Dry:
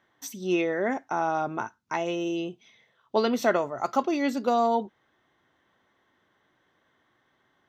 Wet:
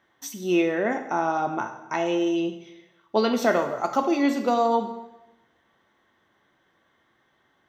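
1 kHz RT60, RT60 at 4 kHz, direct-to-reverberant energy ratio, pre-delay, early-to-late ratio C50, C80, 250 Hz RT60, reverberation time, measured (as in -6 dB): 0.95 s, 0.90 s, 6.0 dB, 4 ms, 9.0 dB, 11.0 dB, 1.0 s, 1.0 s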